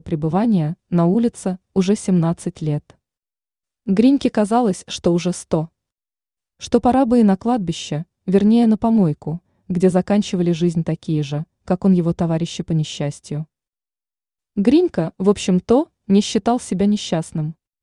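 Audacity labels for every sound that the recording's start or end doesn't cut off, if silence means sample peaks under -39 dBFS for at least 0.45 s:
3.870000	5.660000	sound
6.610000	13.440000	sound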